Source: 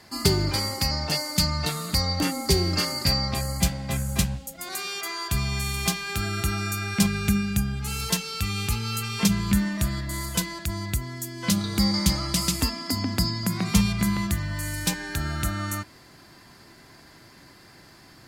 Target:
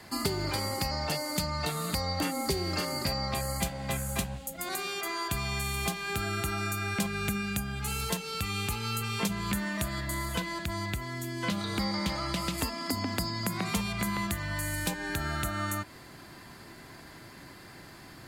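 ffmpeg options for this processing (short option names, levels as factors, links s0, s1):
-filter_complex "[0:a]asettb=1/sr,asplit=3[s0][s1][s2];[s0]atrim=end=10.144[s3];[s1]atrim=start=10.14:end=12.58,asetpts=PTS-STARTPTS,afade=t=in:d=0.004:c=qsin,afade=t=out:st=2.436:d=0.004:c=qsin,acrossover=split=4600[s4][s5];[s5]acompressor=threshold=0.00891:ratio=4:attack=1:release=60[s6];[s4][s6]amix=inputs=2:normalize=0[s7];[s2]atrim=start=12.576[s8];[s3][s7]acrossfade=d=0.004:c1=hsin:c2=qsin[s9];[s9][s8]acrossfade=d=0.004:c1=qsin:c2=hsin,equalizer=f=5400:t=o:w=0.61:g=-6,acrossover=split=410|890[s10][s11][s12];[s10]acompressor=threshold=0.0141:ratio=4[s13];[s11]acompressor=threshold=0.0126:ratio=4[s14];[s12]acompressor=threshold=0.0158:ratio=4[s15];[s13][s14][s15]amix=inputs=3:normalize=0,volume=1.33"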